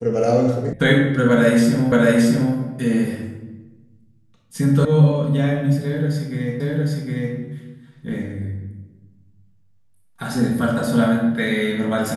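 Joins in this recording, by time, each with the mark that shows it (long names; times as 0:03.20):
0:00.73: cut off before it has died away
0:01.92: the same again, the last 0.62 s
0:04.85: cut off before it has died away
0:06.60: the same again, the last 0.76 s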